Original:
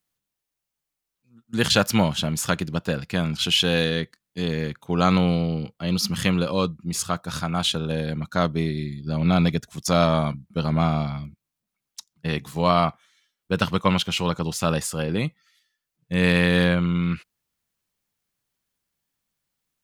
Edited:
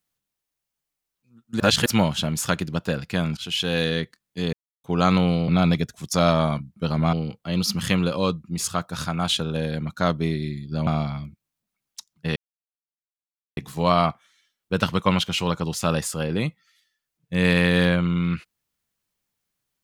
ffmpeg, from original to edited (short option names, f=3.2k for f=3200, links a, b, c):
-filter_complex "[0:a]asplit=10[a][b][c][d][e][f][g][h][i][j];[a]atrim=end=1.602[k];[b]atrim=start=1.598:end=1.862,asetpts=PTS-STARTPTS,areverse[l];[c]atrim=start=1.858:end=3.37,asetpts=PTS-STARTPTS,afade=t=out:st=1.508:d=0.004:c=hsin:silence=0.251189[m];[d]atrim=start=3.37:end=4.53,asetpts=PTS-STARTPTS,afade=t=in:d=0.54:silence=0.251189,afade=t=out:st=1.156:d=0.004:c=hsin[n];[e]atrim=start=4.53:end=4.84,asetpts=PTS-STARTPTS,volume=0[o];[f]atrim=start=4.84:end=5.482,asetpts=PTS-STARTPTS,afade=t=in:d=0.004:c=hsin[p];[g]atrim=start=9.218:end=10.872[q];[h]atrim=start=5.478:end=9.222[r];[i]atrim=start=10.868:end=12.36,asetpts=PTS-STARTPTS,afade=t=out:st=1.488:d=0.004:c=hsin,apad=pad_dur=1.21[s];[j]atrim=start=12.36,asetpts=PTS-STARTPTS,afade=t=in:d=0.004:c=hsin[t];[k][l]acrossfade=d=0.004:c1=hsin:c2=hsin[u];[m][n][o][p]concat=n=4:v=0:a=1[v];[u][v]acrossfade=d=0.004:c1=hsin:c2=hsin[w];[w][q]acrossfade=d=0.004:c1=hsin:c2=hsin[x];[x][r]acrossfade=d=0.004:c1=hsin:c2=hsin[y];[s][t]concat=n=2:v=0:a=1[z];[y][z]acrossfade=d=0.004:c1=hsin:c2=hsin"